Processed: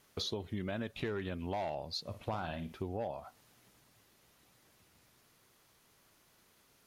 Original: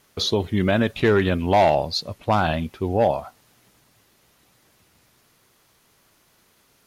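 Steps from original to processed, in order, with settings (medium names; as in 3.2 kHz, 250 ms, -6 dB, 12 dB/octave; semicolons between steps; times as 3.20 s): compression 5:1, threshold -29 dBFS, peak gain reduction 14.5 dB; 2.05–2.73 s: flutter echo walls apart 9.3 m, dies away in 0.3 s; trim -7 dB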